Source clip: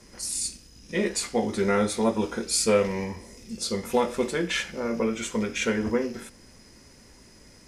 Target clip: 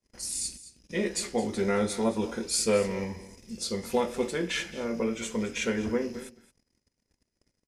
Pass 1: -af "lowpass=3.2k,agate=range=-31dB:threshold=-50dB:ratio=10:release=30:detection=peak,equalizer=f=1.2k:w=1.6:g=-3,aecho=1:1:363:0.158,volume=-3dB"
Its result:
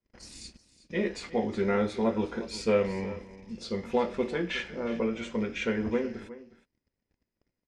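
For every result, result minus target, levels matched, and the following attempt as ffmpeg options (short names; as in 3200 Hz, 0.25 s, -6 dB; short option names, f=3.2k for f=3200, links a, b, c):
echo 0.145 s late; 4000 Hz band -5.0 dB
-af "lowpass=3.2k,agate=range=-31dB:threshold=-50dB:ratio=10:release=30:detection=peak,equalizer=f=1.2k:w=1.6:g=-3,aecho=1:1:218:0.158,volume=-3dB"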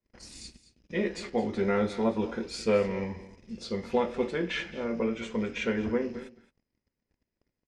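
4000 Hz band -5.0 dB
-af "agate=range=-31dB:threshold=-50dB:ratio=10:release=30:detection=peak,equalizer=f=1.2k:w=1.6:g=-3,aecho=1:1:218:0.158,volume=-3dB"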